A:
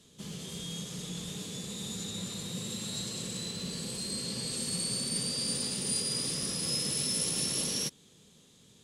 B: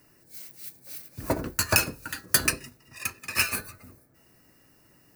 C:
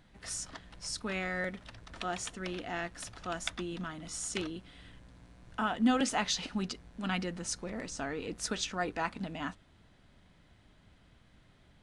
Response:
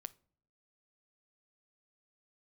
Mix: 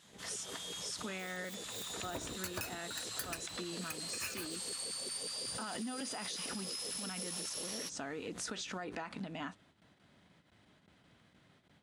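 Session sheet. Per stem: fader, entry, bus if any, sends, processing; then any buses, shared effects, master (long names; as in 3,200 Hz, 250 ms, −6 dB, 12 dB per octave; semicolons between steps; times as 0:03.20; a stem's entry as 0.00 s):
−2.5 dB, 0.00 s, bus A, no send, auto-filter high-pass saw down 5.5 Hz 330–1,600 Hz
−15.0 dB, 0.85 s, no bus, no send, leveller curve on the samples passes 2
−0.5 dB, 0.00 s, bus A, no send, noise gate with hold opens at −52 dBFS; background raised ahead of every attack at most 110 dB per second
bus A: 0.0 dB, high-pass filter 130 Hz 12 dB per octave; brickwall limiter −24.5 dBFS, peak gain reduction 8.5 dB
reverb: not used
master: downward compressor, threshold −38 dBFS, peak gain reduction 12 dB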